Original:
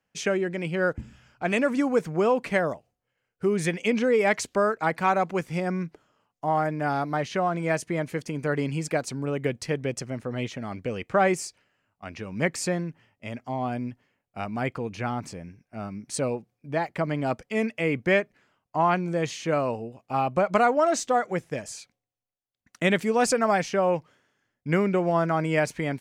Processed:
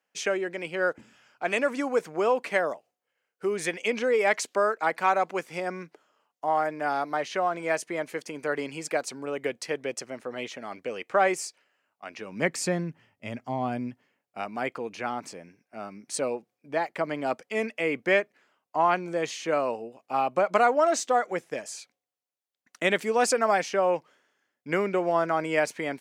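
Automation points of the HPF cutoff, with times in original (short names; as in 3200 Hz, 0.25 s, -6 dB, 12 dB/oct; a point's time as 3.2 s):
12.08 s 390 Hz
12.87 s 100 Hz
13.5 s 100 Hz
14.53 s 320 Hz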